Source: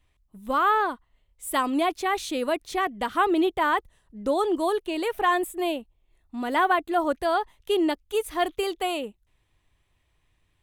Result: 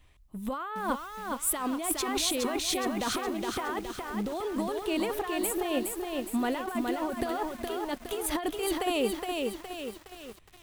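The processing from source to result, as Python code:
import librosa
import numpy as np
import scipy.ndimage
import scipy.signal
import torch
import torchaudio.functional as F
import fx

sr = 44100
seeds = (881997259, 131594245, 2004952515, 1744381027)

y = fx.over_compress(x, sr, threshold_db=-32.0, ratio=-1.0)
y = fx.echo_crushed(y, sr, ms=416, feedback_pct=55, bits=8, wet_db=-3.0)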